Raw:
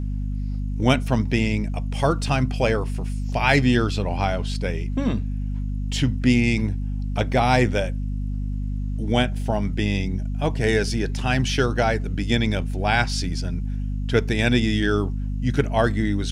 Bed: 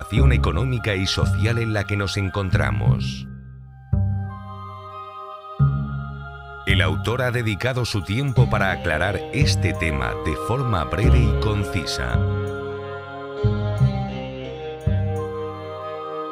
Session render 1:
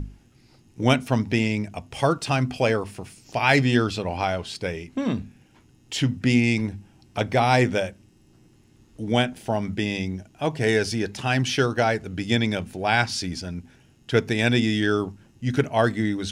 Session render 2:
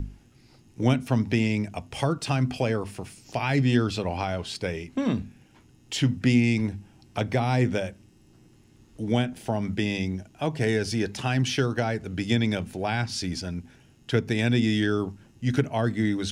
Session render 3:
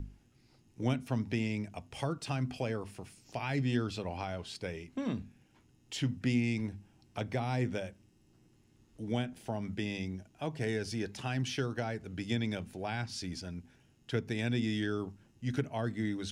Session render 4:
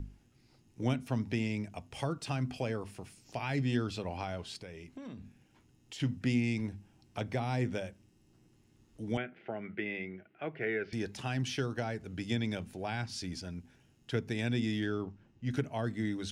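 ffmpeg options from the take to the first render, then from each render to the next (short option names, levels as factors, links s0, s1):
-af "bandreject=f=50:t=h:w=6,bandreject=f=100:t=h:w=6,bandreject=f=150:t=h:w=6,bandreject=f=200:t=h:w=6,bandreject=f=250:t=h:w=6"
-filter_complex "[0:a]acrossover=split=320[s0][s1];[s1]acompressor=threshold=0.0501:ratio=6[s2];[s0][s2]amix=inputs=2:normalize=0"
-af "volume=0.335"
-filter_complex "[0:a]asettb=1/sr,asplit=3[s0][s1][s2];[s0]atrim=end=4.624[s3];[s1]atrim=start=4.62:end=6,asetpts=PTS-STARTPTS,afade=t=in:d=0.004:c=qsin,afade=t=out:st=1.376:d=0.004:c=qsin,acompressor=threshold=0.00708:ratio=4:attack=3.2:release=140:knee=1:detection=peak[s4];[s2]atrim=start=5.996[s5];[s3][s4]acrossfade=d=0.004:c1=hsin:c2=qsin[s6];[s6][s5]acrossfade=d=0.004:c1=qsin:c2=hsin,asettb=1/sr,asplit=3[s7][s8][s9];[s7]atrim=end=9.174[s10];[s8]atrim=start=9.17:end=10.93,asetpts=PTS-STARTPTS,afade=t=in:d=0.004:c=qsin,afade=t=out:st=1.756:d=0.004:c=qsin,highpass=220,equalizer=f=260:t=q:w=4:g=-8,equalizer=f=370:t=q:w=4:g=5,equalizer=f=940:t=q:w=4:g=-9,equalizer=f=1400:t=q:w=4:g=7,equalizer=f=2100:t=q:w=4:g=8,lowpass=f=2700:w=0.5412,lowpass=f=2700:w=1.3066[s11];[s9]atrim=start=10.926[s12];[s10][s11]acrossfade=d=0.004:c1=hsin:c2=qsin[s13];[s13][s12]acrossfade=d=0.004:c1=qsin:c2=hsin,asettb=1/sr,asplit=3[s14][s15][s16];[s14]atrim=end=14.724[s17];[s15]atrim=start=14.72:end=15.51,asetpts=PTS-STARTPTS,afade=t=in:d=0.004:c=qsin,afade=t=out:st=0.786:d=0.004:c=qsin,adynamicsmooth=sensitivity=7.5:basefreq=4200[s18];[s16]atrim=start=15.506[s19];[s17][s18]acrossfade=d=0.004:c1=hsin:c2=qsin[s20];[s20][s19]acrossfade=d=0.004:c1=qsin:c2=hsin"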